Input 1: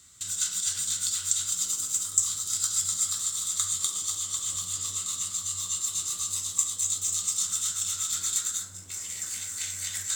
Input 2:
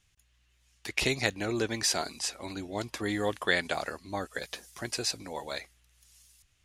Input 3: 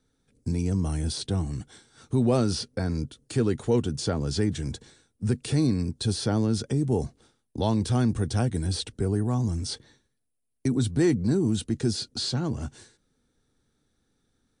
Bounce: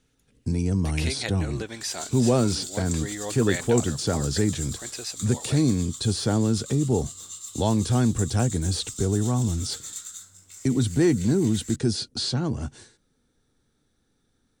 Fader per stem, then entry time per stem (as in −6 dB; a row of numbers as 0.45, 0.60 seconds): −9.0, −4.0, +2.0 decibels; 1.60, 0.00, 0.00 seconds